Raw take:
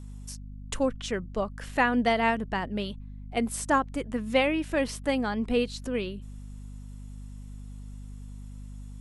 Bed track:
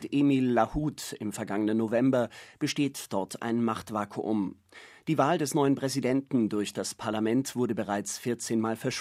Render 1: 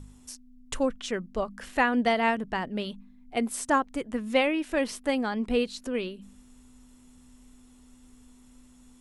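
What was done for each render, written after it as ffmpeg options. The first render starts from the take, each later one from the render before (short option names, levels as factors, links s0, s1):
-af "bandreject=f=50:t=h:w=4,bandreject=f=100:t=h:w=4,bandreject=f=150:t=h:w=4,bandreject=f=200:t=h:w=4"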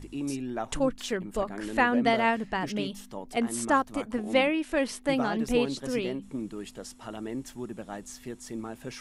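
-filter_complex "[1:a]volume=0.355[s0];[0:a][s0]amix=inputs=2:normalize=0"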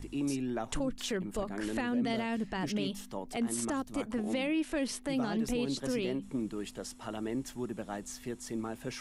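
-filter_complex "[0:a]acrossover=split=400|3000[s0][s1][s2];[s1]acompressor=threshold=0.02:ratio=6[s3];[s0][s3][s2]amix=inputs=3:normalize=0,alimiter=limit=0.0631:level=0:latency=1:release=39"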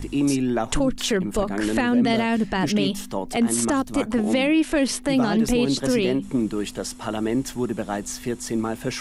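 -af "volume=3.98"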